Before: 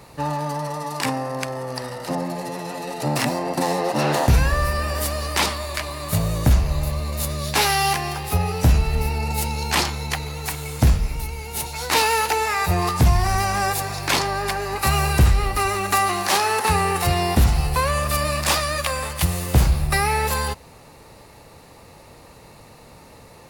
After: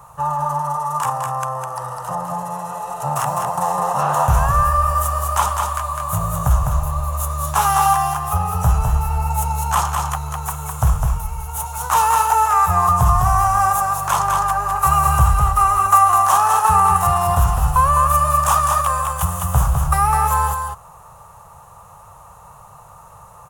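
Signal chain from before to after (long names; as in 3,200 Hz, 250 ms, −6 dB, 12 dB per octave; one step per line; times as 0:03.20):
drawn EQ curve 120 Hz 0 dB, 180 Hz −4 dB, 260 Hz −24 dB, 700 Hz +2 dB, 1,200 Hz +11 dB, 2,100 Hz −14 dB, 3,100 Hz −6 dB, 4,500 Hz −18 dB, 6,500 Hz +1 dB
on a send: single-tap delay 205 ms −4.5 dB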